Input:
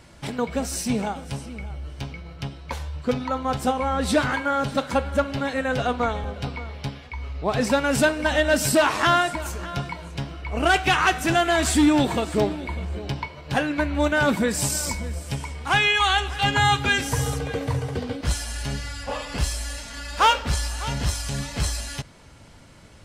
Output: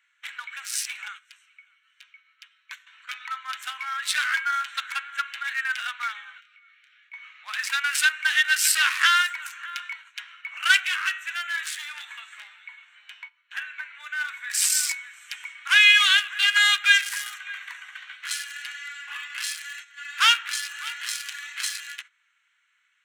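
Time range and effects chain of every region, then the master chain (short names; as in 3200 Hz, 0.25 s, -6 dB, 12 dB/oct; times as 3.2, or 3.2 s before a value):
1.08–2.86 steep high-pass 1000 Hz + high shelf 3400 Hz +3.5 dB
6.38–7.09 Chebyshev high-pass 1200 Hz, order 8 + compressor 10:1, threshold -41 dBFS + doubler 29 ms -4.5 dB
10.87–14.5 low shelf 210 Hz +9.5 dB + resonator 100 Hz, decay 0.43 s, mix 70%
whole clip: Wiener smoothing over 9 samples; gate -36 dBFS, range -13 dB; steep high-pass 1500 Hz 36 dB/oct; gain +6.5 dB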